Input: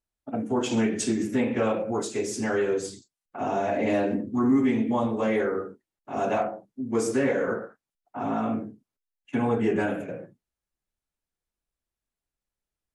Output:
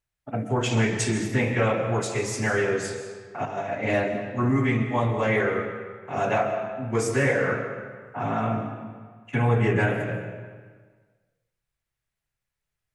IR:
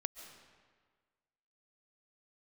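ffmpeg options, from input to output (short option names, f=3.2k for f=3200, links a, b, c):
-filter_complex "[0:a]asettb=1/sr,asplit=3[a][b][c];[a]atrim=end=3.454[d];[b]atrim=start=3.45:end=4.98,asetpts=PTS-STARTPTS,afade=t=in:d=0.004:c=qsin,afade=t=out:st=1.526:d=0.004:c=qsin,agate=range=-9dB:threshold=-24dB:ratio=16:detection=peak[e];[c]atrim=start=4.976[f];[d][e]acrossfade=d=0.004:c1=hsin:c2=qsin[g];[g][f]acrossfade=d=0.004:c1=qsin:c2=hsin,equalizer=f=125:t=o:w=1:g=12,equalizer=f=250:t=o:w=1:g=-8,equalizer=f=2k:t=o:w=1:g=7[h];[1:a]atrim=start_sample=2205[i];[h][i]afir=irnorm=-1:irlink=0,volume=3.5dB"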